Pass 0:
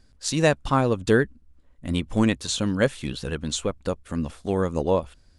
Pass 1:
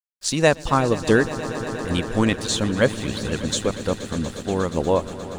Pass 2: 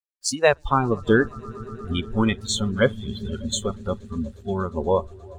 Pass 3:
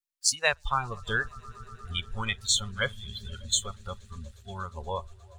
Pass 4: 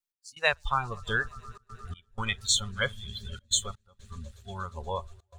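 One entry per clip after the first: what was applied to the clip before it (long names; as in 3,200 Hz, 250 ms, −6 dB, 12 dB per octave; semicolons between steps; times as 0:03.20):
echo that builds up and dies away 119 ms, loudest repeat 5, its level −16 dB; harmonic and percussive parts rebalanced percussive +4 dB; dead-zone distortion −46 dBFS
noise reduction from a noise print of the clip's start 22 dB
guitar amp tone stack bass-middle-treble 10-0-10; level +2.5 dB
gate pattern "x..xxxxxxxxxx.x" 124 BPM −24 dB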